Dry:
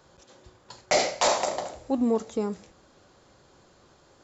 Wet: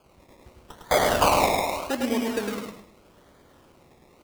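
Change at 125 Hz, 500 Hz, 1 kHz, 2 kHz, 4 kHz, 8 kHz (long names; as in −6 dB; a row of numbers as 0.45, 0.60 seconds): +8.0 dB, +2.0 dB, +5.5 dB, +4.5 dB, +1.0 dB, can't be measured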